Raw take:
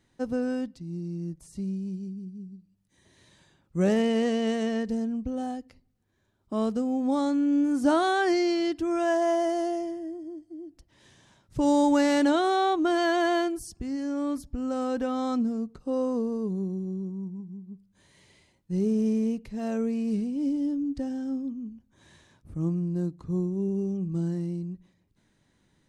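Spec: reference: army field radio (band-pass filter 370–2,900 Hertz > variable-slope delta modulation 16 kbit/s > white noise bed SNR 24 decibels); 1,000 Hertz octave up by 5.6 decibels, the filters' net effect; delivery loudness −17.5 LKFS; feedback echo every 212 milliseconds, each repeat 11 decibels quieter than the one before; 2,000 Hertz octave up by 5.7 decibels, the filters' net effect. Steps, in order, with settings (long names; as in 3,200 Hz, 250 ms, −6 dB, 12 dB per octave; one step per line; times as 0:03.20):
band-pass filter 370–2,900 Hz
parametric band 1,000 Hz +7.5 dB
parametric band 2,000 Hz +5 dB
repeating echo 212 ms, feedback 28%, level −11 dB
variable-slope delta modulation 16 kbit/s
white noise bed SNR 24 dB
level +11 dB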